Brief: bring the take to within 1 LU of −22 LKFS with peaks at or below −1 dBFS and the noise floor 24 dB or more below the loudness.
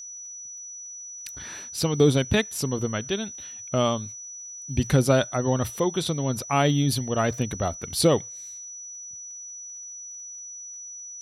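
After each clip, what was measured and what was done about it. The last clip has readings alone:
crackle rate 32 per second; interfering tone 5,900 Hz; level of the tone −37 dBFS; integrated loudness −25.0 LKFS; sample peak −7.0 dBFS; target loudness −22.0 LKFS
→ click removal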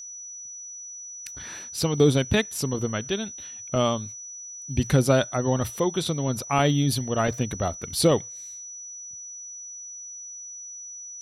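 crackle rate 0.18 per second; interfering tone 5,900 Hz; level of the tone −37 dBFS
→ notch filter 5,900 Hz, Q 30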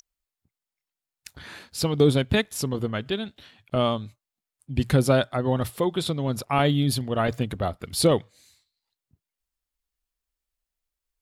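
interfering tone none found; integrated loudness −24.5 LKFS; sample peak −7.0 dBFS; target loudness −22.0 LKFS
→ level +2.5 dB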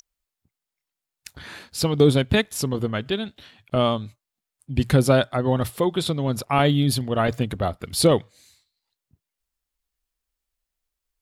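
integrated loudness −22.0 LKFS; sample peak −4.5 dBFS; background noise floor −86 dBFS

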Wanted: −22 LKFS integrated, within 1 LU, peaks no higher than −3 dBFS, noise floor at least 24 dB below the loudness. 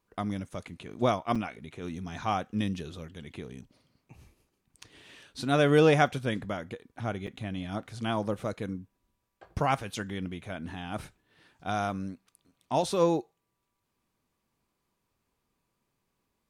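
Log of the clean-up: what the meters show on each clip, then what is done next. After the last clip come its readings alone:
number of dropouts 2; longest dropout 5.5 ms; integrated loudness −30.5 LKFS; sample peak −8.5 dBFS; target loudness −22.0 LKFS
→ repair the gap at 0:01.35/0:07.27, 5.5 ms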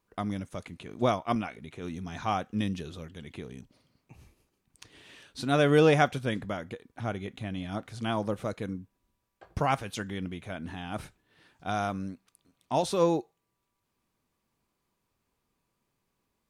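number of dropouts 0; integrated loudness −30.5 LKFS; sample peak −8.5 dBFS; target loudness −22.0 LKFS
→ level +8.5 dB
brickwall limiter −3 dBFS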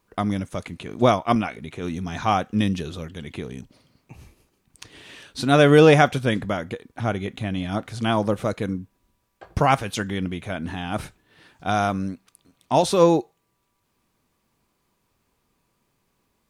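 integrated loudness −22.0 LKFS; sample peak −3.0 dBFS; background noise floor −72 dBFS

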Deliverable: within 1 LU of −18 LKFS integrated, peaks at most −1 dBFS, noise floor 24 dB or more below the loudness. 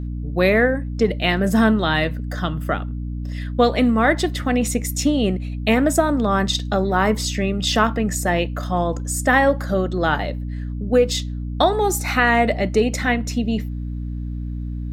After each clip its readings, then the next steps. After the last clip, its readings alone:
mains hum 60 Hz; hum harmonics up to 300 Hz; level of the hum −24 dBFS; integrated loudness −20.5 LKFS; sample peak −2.0 dBFS; target loudness −18.0 LKFS
→ hum removal 60 Hz, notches 5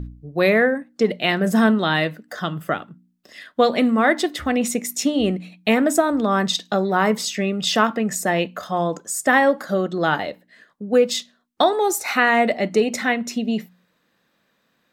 mains hum none found; integrated loudness −20.5 LKFS; sample peak −2.0 dBFS; target loudness −18.0 LKFS
→ level +2.5 dB
brickwall limiter −1 dBFS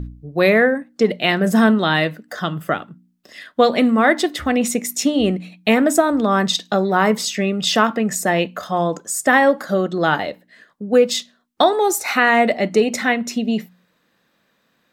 integrated loudness −18.0 LKFS; sample peak −1.0 dBFS; background noise floor −65 dBFS

